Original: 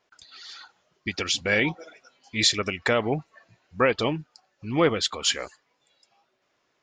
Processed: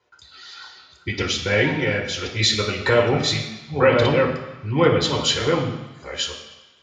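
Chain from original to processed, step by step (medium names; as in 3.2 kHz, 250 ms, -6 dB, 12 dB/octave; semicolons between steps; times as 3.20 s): chunks repeated in reverse 575 ms, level -4 dB; reverberation RT60 1.1 s, pre-delay 3 ms, DRR -2 dB; trim -5.5 dB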